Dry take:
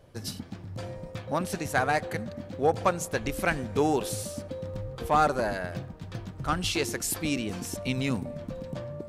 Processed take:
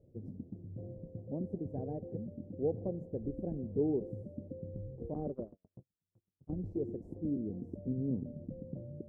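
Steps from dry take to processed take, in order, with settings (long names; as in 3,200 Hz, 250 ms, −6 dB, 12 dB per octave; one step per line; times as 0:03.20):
variable-slope delta modulation 64 kbit/s
inverse Chebyshev low-pass filter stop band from 1,200 Hz, stop band 50 dB
0:05.14–0:06.57: noise gate −31 dBFS, range −48 dB
low-shelf EQ 70 Hz −8 dB
level −4 dB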